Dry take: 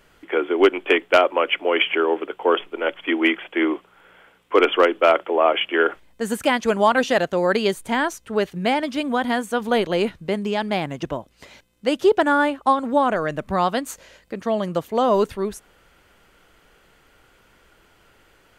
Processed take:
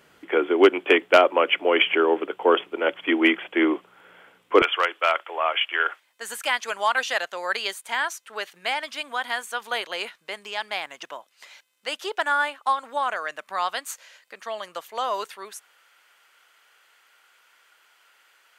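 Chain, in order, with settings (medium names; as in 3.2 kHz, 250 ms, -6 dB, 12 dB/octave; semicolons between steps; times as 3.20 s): high-pass 120 Hz 12 dB/octave, from 4.62 s 1.1 kHz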